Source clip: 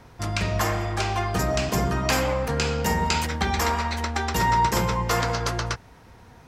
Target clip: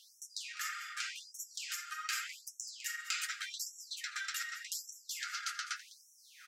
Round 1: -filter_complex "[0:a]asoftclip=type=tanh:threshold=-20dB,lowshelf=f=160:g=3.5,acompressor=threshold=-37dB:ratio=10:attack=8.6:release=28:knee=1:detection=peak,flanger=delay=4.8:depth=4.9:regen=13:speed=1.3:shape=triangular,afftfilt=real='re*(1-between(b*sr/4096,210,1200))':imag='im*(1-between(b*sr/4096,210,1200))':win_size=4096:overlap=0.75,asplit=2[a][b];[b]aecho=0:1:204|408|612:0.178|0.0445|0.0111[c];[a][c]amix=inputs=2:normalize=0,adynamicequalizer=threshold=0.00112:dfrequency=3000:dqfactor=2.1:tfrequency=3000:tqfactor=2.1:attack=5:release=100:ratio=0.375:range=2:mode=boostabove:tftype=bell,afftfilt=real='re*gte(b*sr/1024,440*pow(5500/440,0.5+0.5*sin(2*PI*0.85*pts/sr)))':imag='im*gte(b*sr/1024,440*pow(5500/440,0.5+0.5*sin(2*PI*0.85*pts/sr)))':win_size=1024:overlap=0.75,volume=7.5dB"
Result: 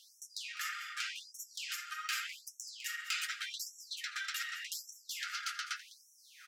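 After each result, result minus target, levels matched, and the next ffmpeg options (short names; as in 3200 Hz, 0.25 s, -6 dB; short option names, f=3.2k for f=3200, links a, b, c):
soft clip: distortion +10 dB; 8000 Hz band -2.5 dB
-filter_complex "[0:a]asoftclip=type=tanh:threshold=-12.5dB,lowshelf=f=160:g=3.5,acompressor=threshold=-37dB:ratio=10:attack=8.6:release=28:knee=1:detection=peak,flanger=delay=4.8:depth=4.9:regen=13:speed=1.3:shape=triangular,afftfilt=real='re*(1-between(b*sr/4096,210,1200))':imag='im*(1-between(b*sr/4096,210,1200))':win_size=4096:overlap=0.75,asplit=2[a][b];[b]aecho=0:1:204|408|612:0.178|0.0445|0.0111[c];[a][c]amix=inputs=2:normalize=0,adynamicequalizer=threshold=0.00112:dfrequency=3000:dqfactor=2.1:tfrequency=3000:tqfactor=2.1:attack=5:release=100:ratio=0.375:range=2:mode=boostabove:tftype=bell,afftfilt=real='re*gte(b*sr/1024,440*pow(5500/440,0.5+0.5*sin(2*PI*0.85*pts/sr)))':imag='im*gte(b*sr/1024,440*pow(5500/440,0.5+0.5*sin(2*PI*0.85*pts/sr)))':win_size=1024:overlap=0.75,volume=7.5dB"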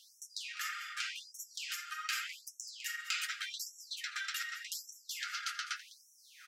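8000 Hz band -2.5 dB
-filter_complex "[0:a]asoftclip=type=tanh:threshold=-12.5dB,lowshelf=f=160:g=3.5,acompressor=threshold=-37dB:ratio=10:attack=8.6:release=28:knee=1:detection=peak,flanger=delay=4.8:depth=4.9:regen=13:speed=1.3:shape=triangular,afftfilt=real='re*(1-between(b*sr/4096,210,1200))':imag='im*(1-between(b*sr/4096,210,1200))':win_size=4096:overlap=0.75,asplit=2[a][b];[b]aecho=0:1:204|408|612:0.178|0.0445|0.0111[c];[a][c]amix=inputs=2:normalize=0,adynamicequalizer=threshold=0.00112:dfrequency=7400:dqfactor=2.1:tfrequency=7400:tqfactor=2.1:attack=5:release=100:ratio=0.375:range=2:mode=boostabove:tftype=bell,afftfilt=real='re*gte(b*sr/1024,440*pow(5500/440,0.5+0.5*sin(2*PI*0.85*pts/sr)))':imag='im*gte(b*sr/1024,440*pow(5500/440,0.5+0.5*sin(2*PI*0.85*pts/sr)))':win_size=1024:overlap=0.75,volume=7.5dB"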